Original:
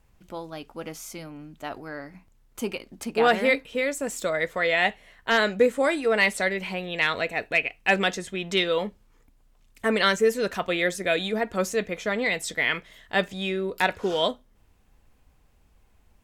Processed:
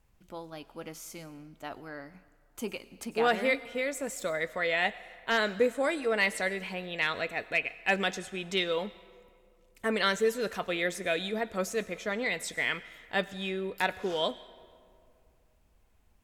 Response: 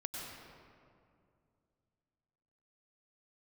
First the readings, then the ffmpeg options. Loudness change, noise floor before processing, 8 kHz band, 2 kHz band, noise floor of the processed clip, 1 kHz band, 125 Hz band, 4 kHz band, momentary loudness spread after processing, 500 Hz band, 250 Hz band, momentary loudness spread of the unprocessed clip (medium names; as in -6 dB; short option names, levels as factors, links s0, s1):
-5.5 dB, -61 dBFS, -5.0 dB, -5.5 dB, -65 dBFS, -5.5 dB, -6.0 dB, -5.5 dB, 16 LU, -6.0 dB, -6.0 dB, 16 LU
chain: -filter_complex "[0:a]asplit=2[s0][s1];[1:a]atrim=start_sample=2205,lowshelf=f=400:g=-9.5,highshelf=f=6000:g=10.5[s2];[s1][s2]afir=irnorm=-1:irlink=0,volume=0.178[s3];[s0][s3]amix=inputs=2:normalize=0,volume=0.473"